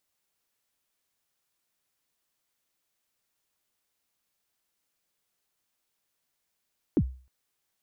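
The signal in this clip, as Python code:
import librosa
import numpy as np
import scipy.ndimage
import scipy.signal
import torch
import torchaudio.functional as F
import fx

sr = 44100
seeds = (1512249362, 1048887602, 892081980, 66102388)

y = fx.drum_kick(sr, seeds[0], length_s=0.31, level_db=-16, start_hz=380.0, end_hz=64.0, sweep_ms=60.0, decay_s=0.39, click=False)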